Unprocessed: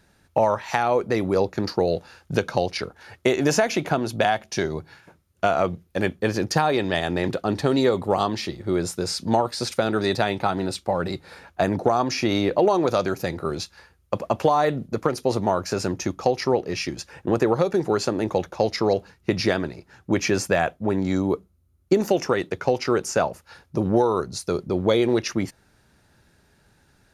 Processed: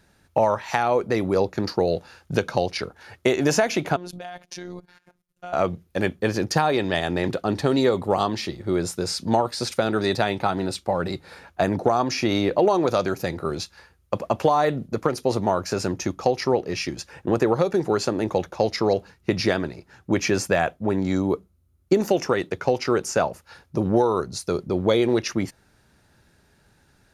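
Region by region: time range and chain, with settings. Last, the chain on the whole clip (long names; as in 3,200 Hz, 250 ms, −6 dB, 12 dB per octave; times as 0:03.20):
0:03.96–0:05.53: output level in coarse steps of 17 dB + phases set to zero 178 Hz
whole clip: no processing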